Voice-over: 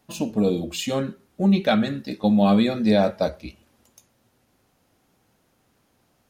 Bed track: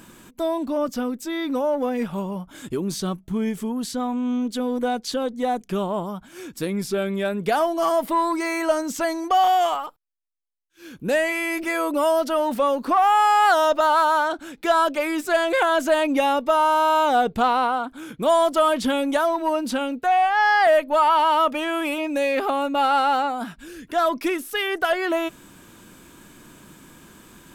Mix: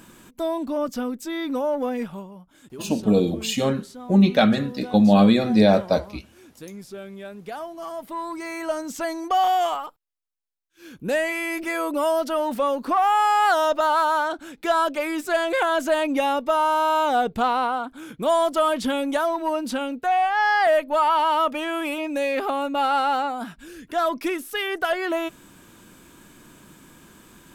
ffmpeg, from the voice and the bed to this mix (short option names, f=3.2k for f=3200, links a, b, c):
-filter_complex "[0:a]adelay=2700,volume=2.5dB[a];[1:a]volume=9.5dB,afade=t=out:st=1.93:d=0.36:silence=0.266073,afade=t=in:st=7.93:d=1.47:silence=0.281838[b];[a][b]amix=inputs=2:normalize=0"